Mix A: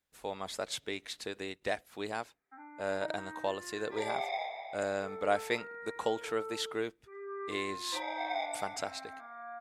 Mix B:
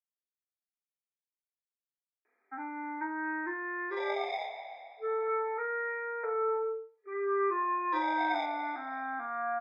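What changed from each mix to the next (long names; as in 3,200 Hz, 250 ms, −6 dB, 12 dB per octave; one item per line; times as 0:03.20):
speech: muted
first sound +11.5 dB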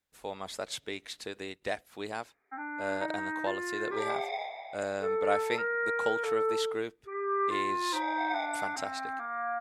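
speech: unmuted
first sound: send −9.0 dB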